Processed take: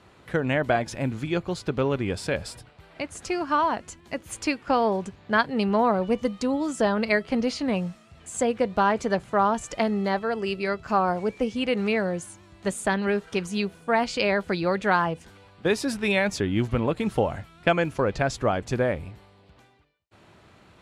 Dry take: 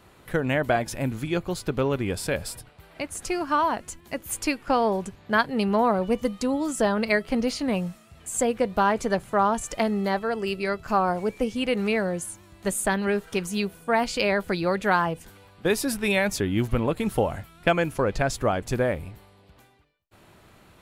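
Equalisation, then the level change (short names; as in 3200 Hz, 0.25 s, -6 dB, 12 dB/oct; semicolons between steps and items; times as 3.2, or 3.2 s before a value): HPF 47 Hz; LPF 6800 Hz 12 dB/oct; 0.0 dB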